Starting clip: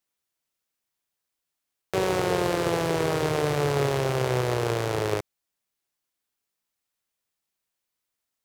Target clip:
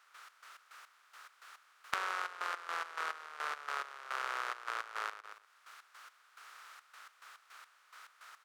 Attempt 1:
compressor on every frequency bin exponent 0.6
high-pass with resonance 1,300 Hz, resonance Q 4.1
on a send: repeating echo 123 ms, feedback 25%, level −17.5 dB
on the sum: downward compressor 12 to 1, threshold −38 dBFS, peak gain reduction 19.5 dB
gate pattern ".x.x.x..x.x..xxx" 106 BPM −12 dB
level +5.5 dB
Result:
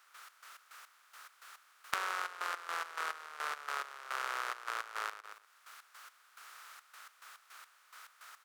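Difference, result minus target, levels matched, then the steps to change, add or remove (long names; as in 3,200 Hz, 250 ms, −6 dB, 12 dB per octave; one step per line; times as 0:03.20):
8,000 Hz band +4.0 dB
add after downward compressor: high-shelf EQ 8,400 Hz −10 dB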